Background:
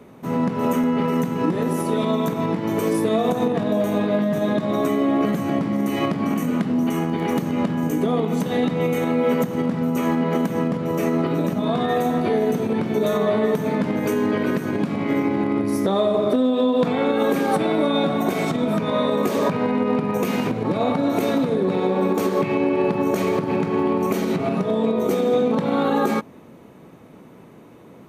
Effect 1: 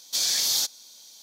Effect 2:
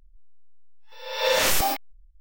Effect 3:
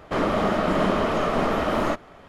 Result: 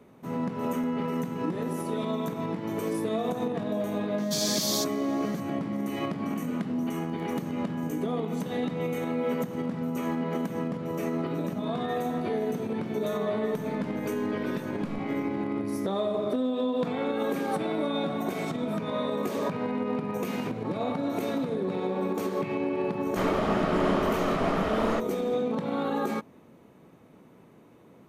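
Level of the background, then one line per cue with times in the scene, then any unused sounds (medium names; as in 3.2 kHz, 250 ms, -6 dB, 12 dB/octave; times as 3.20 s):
background -9 dB
4.18 s: add 1 -5.5 dB
13.38 s: add 2 -18 dB + low-pass that closes with the level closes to 1 kHz, closed at -21.5 dBFS
23.05 s: add 3 -5 dB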